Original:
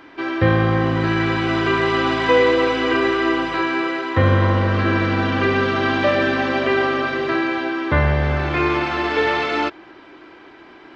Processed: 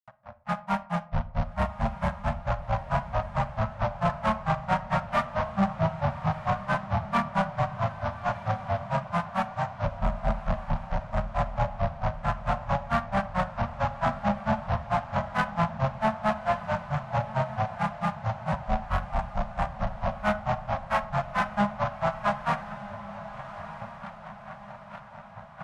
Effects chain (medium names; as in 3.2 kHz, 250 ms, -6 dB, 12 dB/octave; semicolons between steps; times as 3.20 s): in parallel at -11 dB: fuzz box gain 36 dB, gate -43 dBFS; on the sum: speed mistake 78 rpm record played at 33 rpm; granulator 125 ms, grains 4.5 per s, pitch spread up and down by 7 st; elliptic band-stop 220–590 Hz, stop band 40 dB; peaking EQ 1.1 kHz +9.5 dB 2.6 oct; on a send at -16 dB: reverberation RT60 0.45 s, pre-delay 31 ms; on the sum: saturation -9 dBFS, distortion -17 dB; echo that smears into a reverb 1262 ms, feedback 50%, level -13 dB; trim -7 dB